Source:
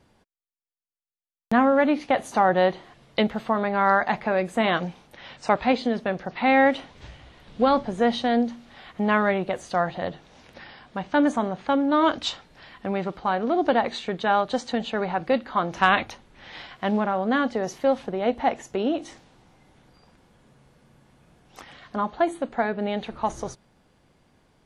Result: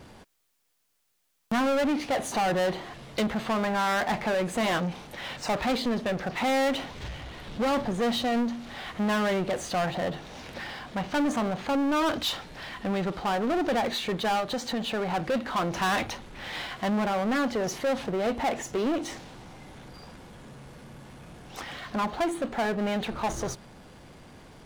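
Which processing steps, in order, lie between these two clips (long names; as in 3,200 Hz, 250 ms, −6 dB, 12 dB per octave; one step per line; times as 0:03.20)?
0:14.40–0:15.12: downward compressor 4 to 1, threshold −26 dBFS, peak gain reduction 6.5 dB
power curve on the samples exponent 0.7
soft clipping −18 dBFS, distortion −11 dB
level −4 dB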